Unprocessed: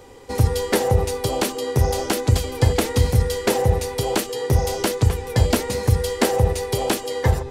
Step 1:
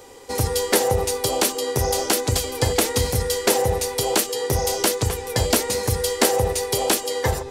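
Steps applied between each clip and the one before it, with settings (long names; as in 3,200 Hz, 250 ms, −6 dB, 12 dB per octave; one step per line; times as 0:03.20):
bass and treble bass −8 dB, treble +6 dB
level +1 dB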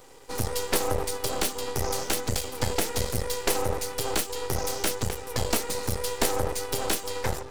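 half-wave rectification
level −3 dB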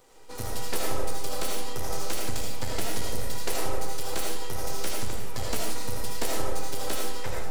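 convolution reverb RT60 0.75 s, pre-delay 35 ms, DRR −2 dB
level −7.5 dB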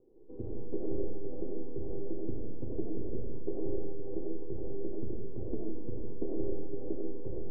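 transistor ladder low-pass 400 Hz, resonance 65%
level +5 dB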